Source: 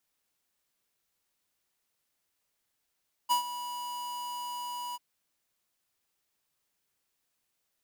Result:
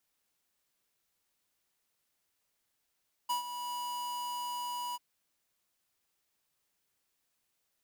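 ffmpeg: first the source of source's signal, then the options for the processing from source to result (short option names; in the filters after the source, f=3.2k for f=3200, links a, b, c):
-f lavfi -i "aevalsrc='0.0631*(2*lt(mod(975*t,1),0.5)-1)':d=1.691:s=44100,afade=t=in:d=0.025,afade=t=out:st=0.025:d=0.109:silence=0.211,afade=t=out:st=1.66:d=0.031"
-af "alimiter=level_in=7dB:limit=-24dB:level=0:latency=1:release=401,volume=-7dB"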